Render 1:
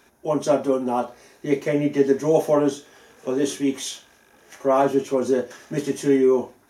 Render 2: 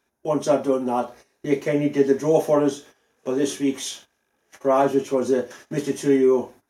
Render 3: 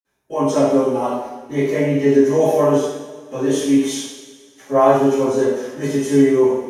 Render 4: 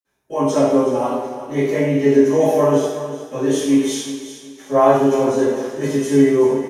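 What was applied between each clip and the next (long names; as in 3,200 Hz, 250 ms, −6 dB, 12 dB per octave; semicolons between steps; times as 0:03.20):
noise gate −43 dBFS, range −16 dB
convolution reverb, pre-delay 46 ms; level −1 dB
repeating echo 370 ms, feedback 28%, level −12.5 dB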